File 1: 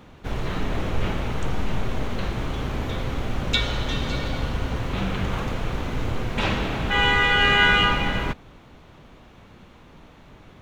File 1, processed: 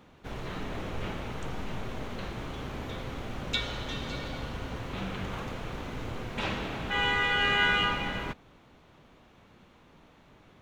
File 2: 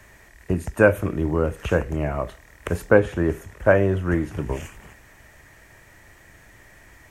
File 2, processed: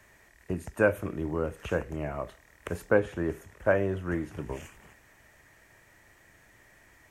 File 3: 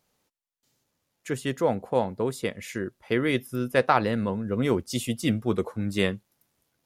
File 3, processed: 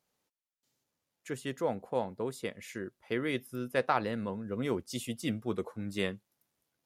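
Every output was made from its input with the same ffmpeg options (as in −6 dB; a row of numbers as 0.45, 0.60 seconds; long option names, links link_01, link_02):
-af "lowshelf=frequency=98:gain=-7,volume=-7.5dB"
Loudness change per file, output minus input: −8.0, −8.0, −8.0 LU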